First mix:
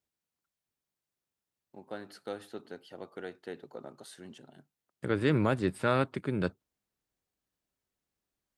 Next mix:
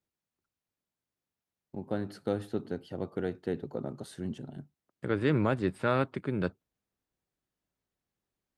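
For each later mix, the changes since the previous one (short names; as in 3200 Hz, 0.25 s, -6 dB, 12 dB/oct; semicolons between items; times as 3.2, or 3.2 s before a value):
first voice: remove HPF 980 Hz 6 dB/oct; second voice: add high shelf 5500 Hz -10 dB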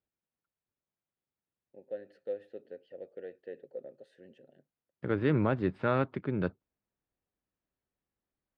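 first voice: add vowel filter e; second voice: add air absorption 230 m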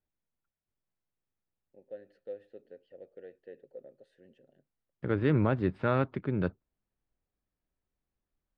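first voice -5.0 dB; master: remove HPF 120 Hz 6 dB/oct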